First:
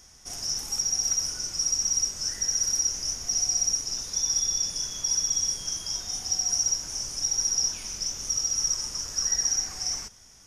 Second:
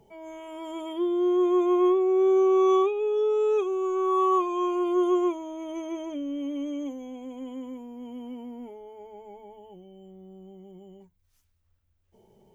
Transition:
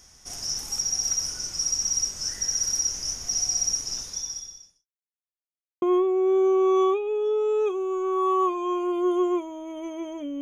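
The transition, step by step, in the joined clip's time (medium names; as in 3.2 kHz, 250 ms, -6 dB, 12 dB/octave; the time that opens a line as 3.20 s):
first
3.98–4.87 s: fade out quadratic
4.87–5.82 s: mute
5.82 s: go over to second from 1.74 s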